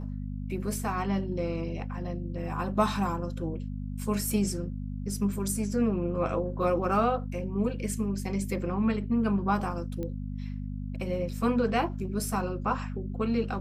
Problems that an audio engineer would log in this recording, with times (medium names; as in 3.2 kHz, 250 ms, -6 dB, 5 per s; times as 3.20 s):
hum 50 Hz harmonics 5 -35 dBFS
10.03 s: pop -24 dBFS